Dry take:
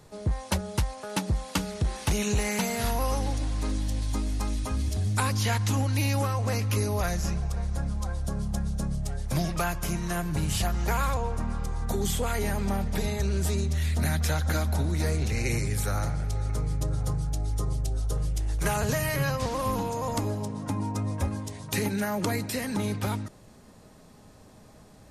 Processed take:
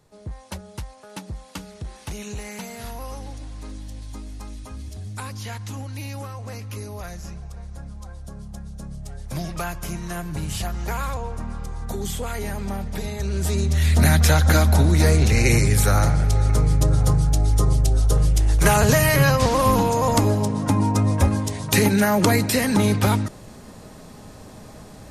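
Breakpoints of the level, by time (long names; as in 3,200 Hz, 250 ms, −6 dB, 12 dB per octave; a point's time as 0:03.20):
0:08.68 −7 dB
0:09.57 −0.5 dB
0:13.13 −0.5 dB
0:14.00 +10.5 dB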